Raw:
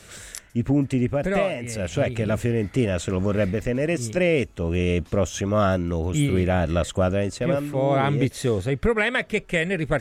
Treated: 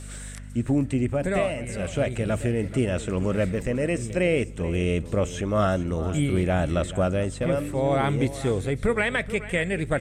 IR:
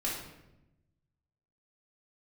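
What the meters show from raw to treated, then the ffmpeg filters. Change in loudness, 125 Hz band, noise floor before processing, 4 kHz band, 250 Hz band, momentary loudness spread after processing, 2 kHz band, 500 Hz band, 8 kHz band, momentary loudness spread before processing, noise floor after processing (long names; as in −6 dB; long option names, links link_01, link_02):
−2.0 dB, −2.0 dB, −48 dBFS, −3.5 dB, −2.0 dB, 4 LU, −2.5 dB, −2.0 dB, −3.0 dB, 4 LU, −38 dBFS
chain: -filter_complex "[0:a]aeval=exprs='val(0)+0.0178*(sin(2*PI*50*n/s)+sin(2*PI*2*50*n/s)/2+sin(2*PI*3*50*n/s)/3+sin(2*PI*4*50*n/s)/4+sin(2*PI*5*50*n/s)/5)':channel_layout=same,equalizer=frequency=8400:width=4.4:gain=13.5,acrossover=split=3600[link_01][link_02];[link_02]acompressor=threshold=-37dB:ratio=4:attack=1:release=60[link_03];[link_01][link_03]amix=inputs=2:normalize=0,aecho=1:1:432:0.178,asplit=2[link_04][link_05];[1:a]atrim=start_sample=2205[link_06];[link_05][link_06]afir=irnorm=-1:irlink=0,volume=-26dB[link_07];[link_04][link_07]amix=inputs=2:normalize=0,volume=-2.5dB"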